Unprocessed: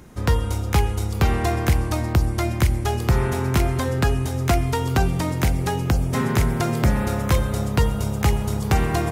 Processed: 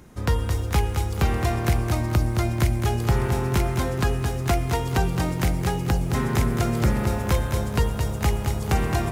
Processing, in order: lo-fi delay 0.217 s, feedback 35%, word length 8-bit, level -6.5 dB; gain -3 dB

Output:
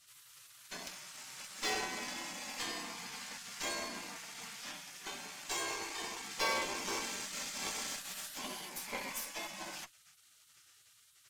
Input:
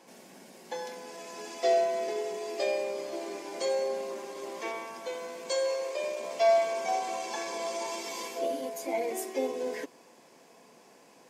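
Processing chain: spectral gate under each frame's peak -20 dB weak; added harmonics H 8 -20 dB, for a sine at -24.5 dBFS; gain +3.5 dB

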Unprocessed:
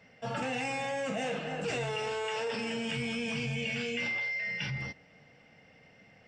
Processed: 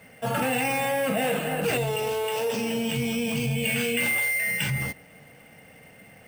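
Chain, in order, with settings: 1.77–3.64 bell 1600 Hz -9.5 dB 1.2 oct; careless resampling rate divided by 4×, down filtered, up hold; gain +8.5 dB

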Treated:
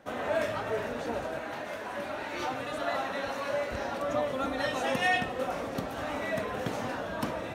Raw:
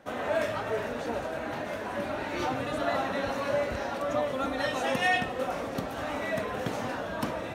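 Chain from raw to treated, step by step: 1.39–3.73 low shelf 360 Hz -8 dB; gain -1 dB

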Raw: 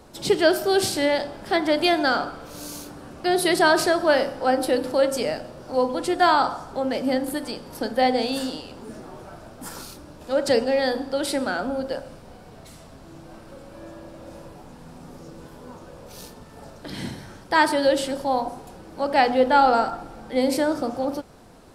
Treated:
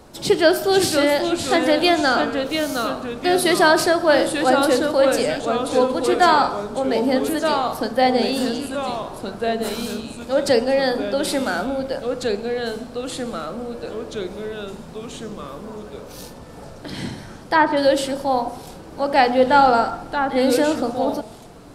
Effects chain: 16.23–17.77 treble ducked by the level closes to 1800 Hz, closed at -14.5 dBFS; echoes that change speed 0.465 s, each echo -2 st, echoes 2, each echo -6 dB; gain +3 dB

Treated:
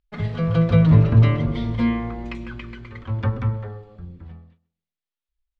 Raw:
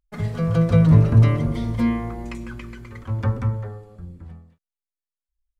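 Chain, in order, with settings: synth low-pass 3500 Hz, resonance Q 1.6; tape echo 0.135 s, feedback 26%, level -19 dB, low-pass 1900 Hz; ending taper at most 220 dB/s

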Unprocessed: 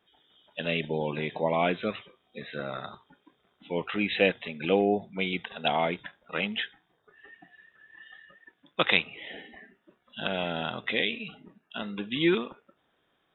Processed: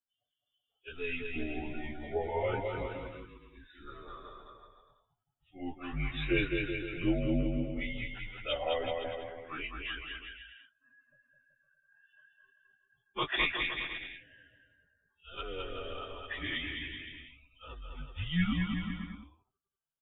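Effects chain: per-bin expansion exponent 1.5; plain phase-vocoder stretch 1.5×; frequency shift -160 Hz; on a send: bouncing-ball echo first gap 0.21 s, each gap 0.8×, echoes 5; on the sum: gain -2.5 dB

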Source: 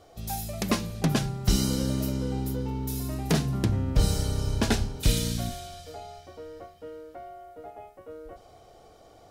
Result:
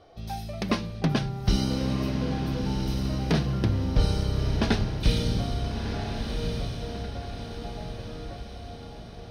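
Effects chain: polynomial smoothing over 15 samples; diffused feedback echo 1.344 s, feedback 51%, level -5.5 dB

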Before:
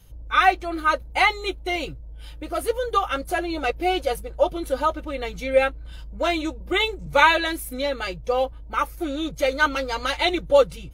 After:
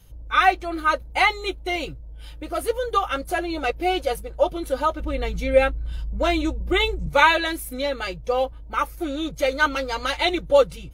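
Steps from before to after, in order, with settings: 5–7.09 low shelf 220 Hz +9.5 dB

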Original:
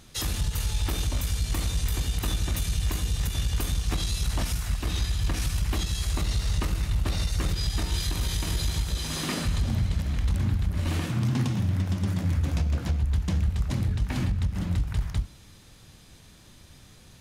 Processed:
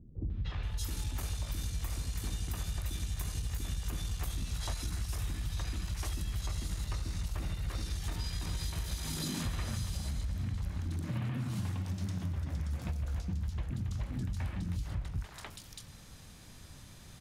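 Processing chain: three bands offset in time lows, mids, highs 0.3/0.63 s, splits 370/3300 Hz; compressor 10:1, threshold -32 dBFS, peak gain reduction 12 dB

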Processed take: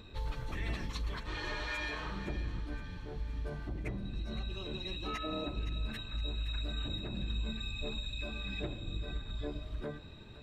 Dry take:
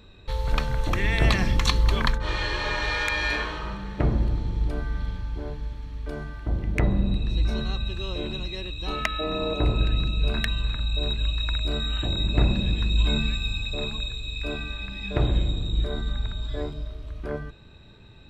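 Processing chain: bell 280 Hz +3.5 dB 0.73 oct; compressor 6:1, threshold -33 dBFS, peak gain reduction 17.5 dB; plain phase-vocoder stretch 0.57×; on a send: thinning echo 0.516 s, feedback 52%, high-pass 1100 Hz, level -11 dB; on the sum: gain +1 dB

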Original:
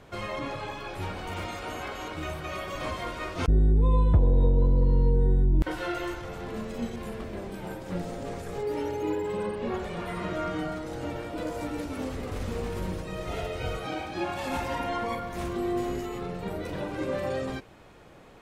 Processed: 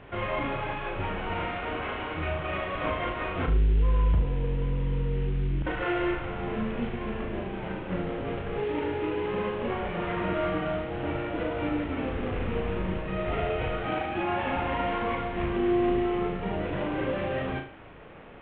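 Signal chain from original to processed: CVSD 16 kbps; in parallel at -8 dB: soft clip -19 dBFS, distortion -14 dB; on the sum: limiter -20.5 dBFS, peak gain reduction 10.5 dB; flutter echo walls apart 6.3 m, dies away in 0.39 s

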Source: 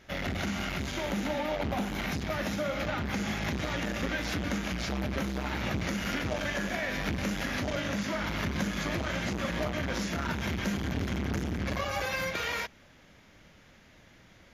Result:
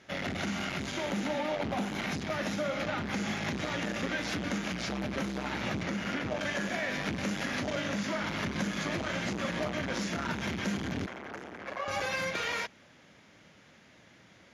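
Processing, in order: soft clip -19 dBFS, distortion -27 dB; LPF 11000 Hz 24 dB/oct; 5.83–6.41 high shelf 4300 Hz -9 dB; HPF 120 Hz 12 dB/oct; 11.06–11.88 three-band isolator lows -19 dB, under 420 Hz, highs -12 dB, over 2200 Hz

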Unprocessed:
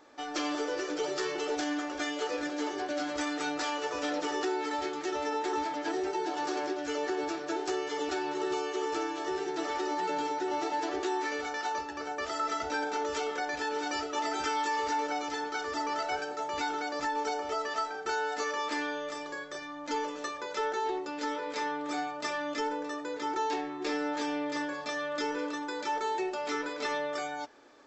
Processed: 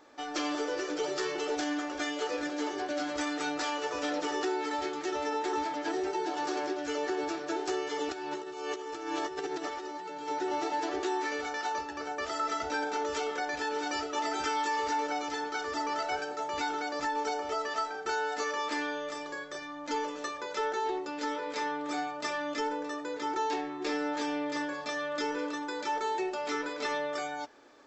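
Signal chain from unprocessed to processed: 8.12–10.29 negative-ratio compressor -36 dBFS, ratio -0.5

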